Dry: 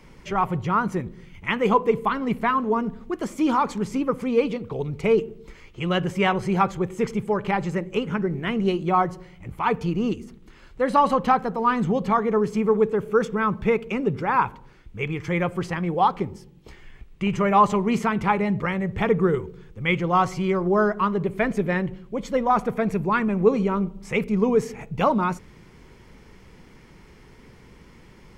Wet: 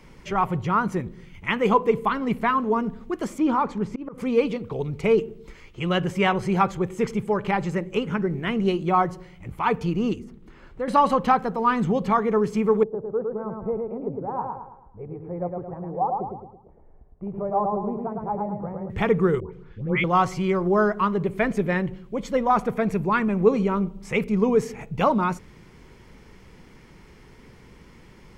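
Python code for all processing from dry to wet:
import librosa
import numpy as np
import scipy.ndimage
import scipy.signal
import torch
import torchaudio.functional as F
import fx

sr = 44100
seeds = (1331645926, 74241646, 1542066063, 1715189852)

y = fx.chain(x, sr, fx.lowpass(hz=1600.0, slope=6),
    fx.auto_swell(attack_ms=167.0), at=(3.38, 4.18))
y = fx.chain(y, sr, fx.high_shelf(hz=2000.0, db=-8.5),
    fx.band_squash(depth_pct=40), at=(10.19, 10.88))
y = fx.chain(y, sr, fx.ladder_lowpass(hz=840.0, resonance_pct=50),
    fx.echo_feedback(ms=109, feedback_pct=43, wet_db=-3.5), at=(12.83, 18.9))
y = fx.chain(y, sr, fx.block_float(bits=7),
    fx.lowpass(hz=3100.0, slope=12),
    fx.dispersion(late='highs', ms=134.0, hz=1300.0), at=(19.4, 20.04))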